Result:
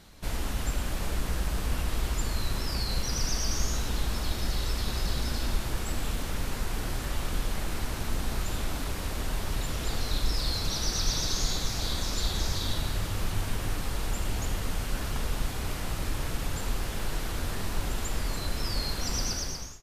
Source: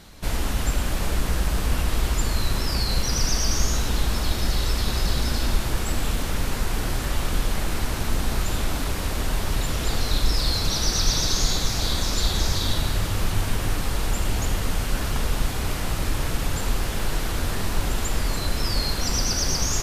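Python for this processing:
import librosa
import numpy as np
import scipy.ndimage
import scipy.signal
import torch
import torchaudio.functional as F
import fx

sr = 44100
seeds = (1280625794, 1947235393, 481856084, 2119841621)

y = fx.fade_out_tail(x, sr, length_s=0.56)
y = y * librosa.db_to_amplitude(-6.5)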